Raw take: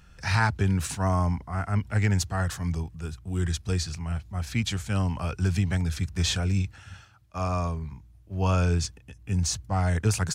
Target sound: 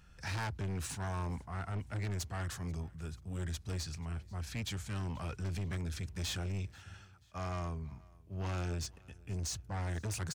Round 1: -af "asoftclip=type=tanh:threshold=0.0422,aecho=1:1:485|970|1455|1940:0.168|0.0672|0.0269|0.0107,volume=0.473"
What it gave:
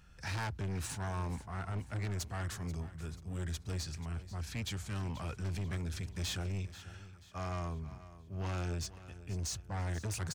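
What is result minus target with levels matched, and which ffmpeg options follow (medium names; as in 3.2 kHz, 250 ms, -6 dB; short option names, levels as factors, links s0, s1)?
echo-to-direct +9 dB
-af "asoftclip=type=tanh:threshold=0.0422,aecho=1:1:485|970:0.0596|0.0238,volume=0.473"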